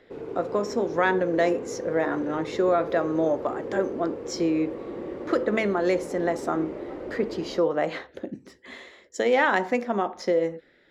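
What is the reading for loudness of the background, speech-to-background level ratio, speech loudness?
-35.5 LUFS, 9.5 dB, -26.0 LUFS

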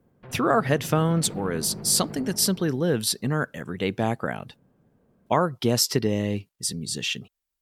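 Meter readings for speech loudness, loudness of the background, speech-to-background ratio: -25.0 LUFS, -39.0 LUFS, 14.0 dB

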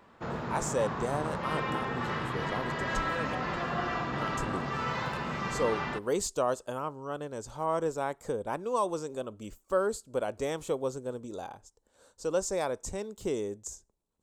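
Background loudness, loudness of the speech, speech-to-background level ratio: -33.5 LUFS, -34.5 LUFS, -1.0 dB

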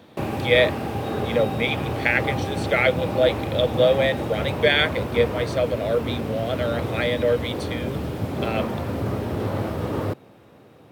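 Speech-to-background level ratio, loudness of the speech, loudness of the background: 4.0 dB, -23.5 LUFS, -27.5 LUFS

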